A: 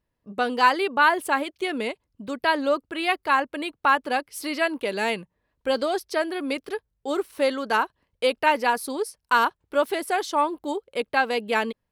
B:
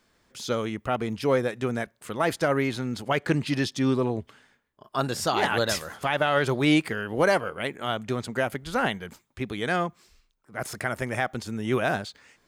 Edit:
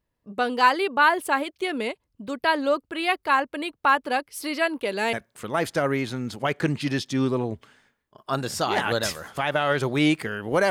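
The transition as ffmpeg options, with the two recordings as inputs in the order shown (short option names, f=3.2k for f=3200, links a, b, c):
-filter_complex "[0:a]apad=whole_dur=10.7,atrim=end=10.7,atrim=end=5.132[a];[1:a]atrim=start=1.788:end=7.36[b];[a][b]acrossfade=d=0.004:c1=hsin:c2=hsin"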